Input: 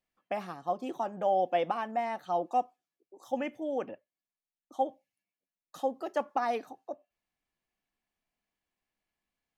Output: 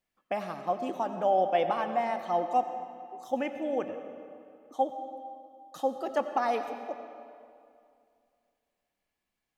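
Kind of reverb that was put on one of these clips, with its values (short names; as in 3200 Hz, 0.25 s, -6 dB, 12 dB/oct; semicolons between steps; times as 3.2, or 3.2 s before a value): digital reverb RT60 2.4 s, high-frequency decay 0.75×, pre-delay 50 ms, DRR 8 dB; gain +2 dB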